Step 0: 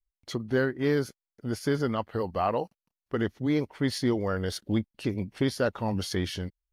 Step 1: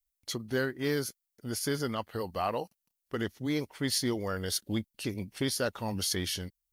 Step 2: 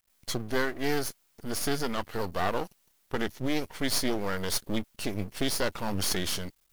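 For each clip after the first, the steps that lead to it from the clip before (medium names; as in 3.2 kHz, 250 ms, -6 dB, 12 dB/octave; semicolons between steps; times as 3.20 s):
pre-emphasis filter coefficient 0.8; trim +8.5 dB
companding laws mixed up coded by mu; half-wave rectifier; trim +5.5 dB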